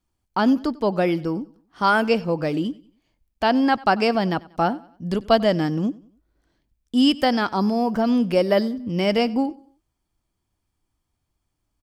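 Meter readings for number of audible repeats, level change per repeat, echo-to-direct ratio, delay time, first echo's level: 2, -8.0 dB, -21.5 dB, 94 ms, -22.0 dB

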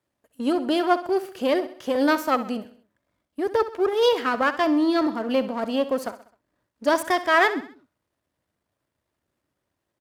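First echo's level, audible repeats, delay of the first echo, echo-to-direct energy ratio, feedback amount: -14.0 dB, 4, 65 ms, -13.0 dB, 47%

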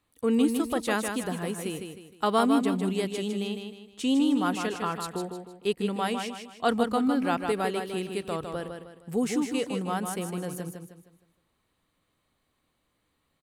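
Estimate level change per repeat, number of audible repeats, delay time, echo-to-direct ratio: -8.5 dB, 4, 0.155 s, -5.5 dB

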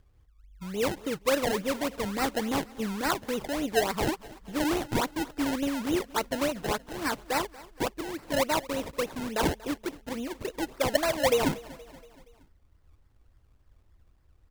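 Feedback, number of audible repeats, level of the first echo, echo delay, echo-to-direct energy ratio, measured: 55%, 3, -20.0 dB, 0.236 s, -18.5 dB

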